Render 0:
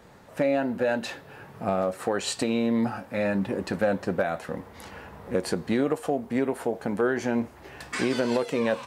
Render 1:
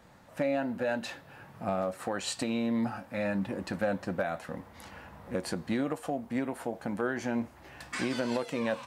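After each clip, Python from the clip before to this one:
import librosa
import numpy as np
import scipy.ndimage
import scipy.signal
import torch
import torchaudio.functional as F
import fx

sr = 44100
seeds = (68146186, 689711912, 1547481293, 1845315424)

y = fx.peak_eq(x, sr, hz=420.0, db=-10.5, octaves=0.27)
y = F.gain(torch.from_numpy(y), -4.5).numpy()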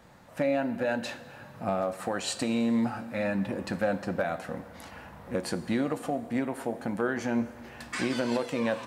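y = fx.rev_plate(x, sr, seeds[0], rt60_s=2.0, hf_ratio=0.85, predelay_ms=0, drr_db=13.0)
y = F.gain(torch.from_numpy(y), 2.0).numpy()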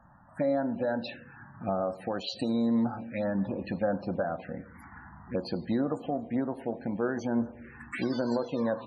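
y = fx.env_phaser(x, sr, low_hz=410.0, high_hz=2600.0, full_db=-25.5)
y = fx.spec_topn(y, sr, count=64)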